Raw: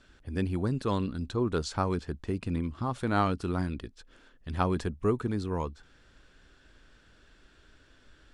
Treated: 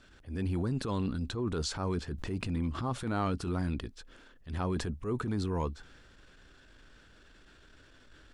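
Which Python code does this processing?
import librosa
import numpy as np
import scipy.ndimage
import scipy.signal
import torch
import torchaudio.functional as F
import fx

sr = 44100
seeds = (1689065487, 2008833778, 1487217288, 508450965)

p1 = fx.over_compress(x, sr, threshold_db=-31.0, ratio=-0.5)
p2 = x + (p1 * 10.0 ** (-1.0 / 20.0))
p3 = fx.transient(p2, sr, attack_db=-9, sustain_db=3)
p4 = fx.pre_swell(p3, sr, db_per_s=59.0, at=(2.18, 2.88))
y = p4 * 10.0 ** (-5.5 / 20.0)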